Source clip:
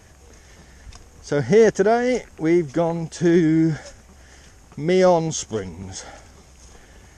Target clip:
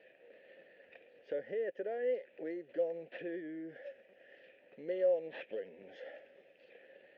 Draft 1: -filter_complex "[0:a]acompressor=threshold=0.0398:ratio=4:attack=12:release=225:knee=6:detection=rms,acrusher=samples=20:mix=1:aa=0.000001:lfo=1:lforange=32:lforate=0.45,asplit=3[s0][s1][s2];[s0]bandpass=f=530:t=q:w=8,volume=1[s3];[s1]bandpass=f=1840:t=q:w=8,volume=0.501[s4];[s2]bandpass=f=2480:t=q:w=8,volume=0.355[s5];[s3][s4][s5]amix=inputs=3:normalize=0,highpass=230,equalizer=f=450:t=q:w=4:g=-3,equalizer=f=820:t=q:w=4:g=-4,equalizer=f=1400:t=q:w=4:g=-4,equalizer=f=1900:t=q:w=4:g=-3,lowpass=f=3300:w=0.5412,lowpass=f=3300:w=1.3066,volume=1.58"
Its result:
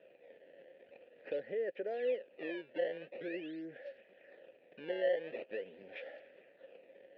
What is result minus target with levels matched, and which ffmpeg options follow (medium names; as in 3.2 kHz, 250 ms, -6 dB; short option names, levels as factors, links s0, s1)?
decimation with a swept rate: distortion +10 dB
-filter_complex "[0:a]acompressor=threshold=0.0398:ratio=4:attack=12:release=225:knee=6:detection=rms,acrusher=samples=4:mix=1:aa=0.000001:lfo=1:lforange=6.4:lforate=0.45,asplit=3[s0][s1][s2];[s0]bandpass=f=530:t=q:w=8,volume=1[s3];[s1]bandpass=f=1840:t=q:w=8,volume=0.501[s4];[s2]bandpass=f=2480:t=q:w=8,volume=0.355[s5];[s3][s4][s5]amix=inputs=3:normalize=0,highpass=230,equalizer=f=450:t=q:w=4:g=-3,equalizer=f=820:t=q:w=4:g=-4,equalizer=f=1400:t=q:w=4:g=-4,equalizer=f=1900:t=q:w=4:g=-3,lowpass=f=3300:w=0.5412,lowpass=f=3300:w=1.3066,volume=1.58"